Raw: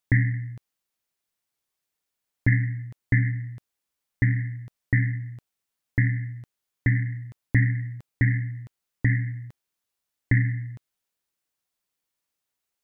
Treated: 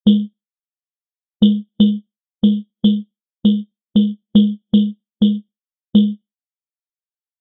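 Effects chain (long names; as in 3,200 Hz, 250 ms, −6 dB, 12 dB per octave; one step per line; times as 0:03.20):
low-shelf EQ 78 Hz +6 dB
in parallel at −5 dB: soft clipping −24 dBFS, distortion −7 dB
on the sum: noise gate −27 dBFS, range −25 dB
wrong playback speed 45 rpm record played at 78 rpm
on a send at −16.5 dB: convolution reverb RT60 0.50 s, pre-delay 4 ms
on the sum: low-pass that shuts in the quiet parts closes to 1,300 Hz, open at −17.5 dBFS
low-shelf EQ 200 Hz −3.5 dB
every bin expanded away from the loudest bin 1.5 to 1
level +6.5 dB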